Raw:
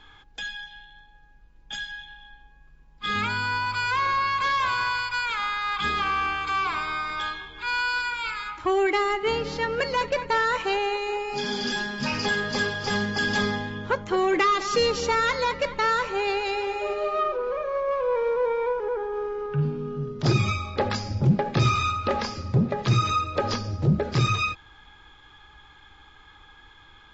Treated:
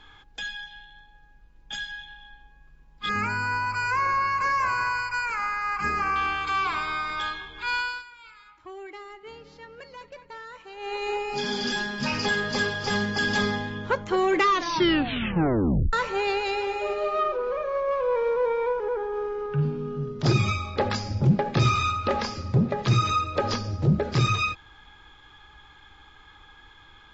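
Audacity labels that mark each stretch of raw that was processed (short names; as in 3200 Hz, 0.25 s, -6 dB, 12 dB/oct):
3.090000	6.160000	Butterworth band-stop 3500 Hz, Q 1.5
7.740000	11.070000	dip -18.5 dB, fades 0.31 s
14.460000	14.460000	tape stop 1.47 s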